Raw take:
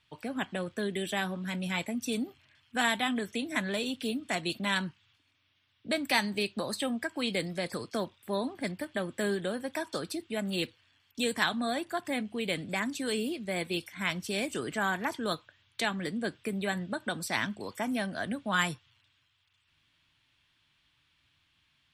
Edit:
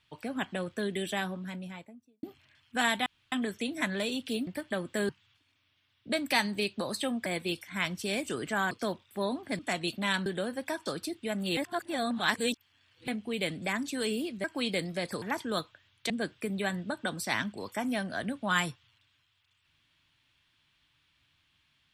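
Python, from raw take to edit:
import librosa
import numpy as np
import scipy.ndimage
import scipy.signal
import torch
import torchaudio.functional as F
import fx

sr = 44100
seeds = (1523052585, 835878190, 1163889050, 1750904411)

y = fx.studio_fade_out(x, sr, start_s=1.02, length_s=1.21)
y = fx.edit(y, sr, fx.insert_room_tone(at_s=3.06, length_s=0.26),
    fx.swap(start_s=4.21, length_s=0.67, other_s=8.71, other_length_s=0.62),
    fx.swap(start_s=7.05, length_s=0.78, other_s=13.51, other_length_s=1.45),
    fx.reverse_span(start_s=10.64, length_s=1.51),
    fx.cut(start_s=15.84, length_s=0.29), tone=tone)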